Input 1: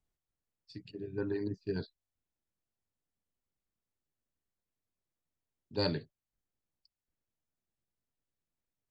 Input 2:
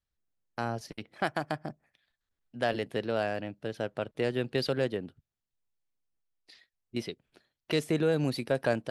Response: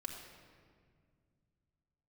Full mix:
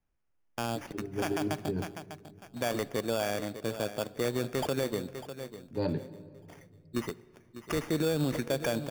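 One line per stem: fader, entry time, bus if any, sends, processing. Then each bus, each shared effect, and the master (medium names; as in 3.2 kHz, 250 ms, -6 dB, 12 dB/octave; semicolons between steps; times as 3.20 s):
+1.0 dB, 0.00 s, send -6 dB, no echo send, low-pass 2 kHz 12 dB/octave; peaking EQ 1.5 kHz -8.5 dB 1 oct
+0.5 dB, 0.00 s, send -13.5 dB, echo send -12.5 dB, sample-rate reducer 4 kHz, jitter 0%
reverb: on, RT60 2.0 s, pre-delay 3 ms
echo: feedback delay 599 ms, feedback 28%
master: peak limiter -20.5 dBFS, peak gain reduction 7.5 dB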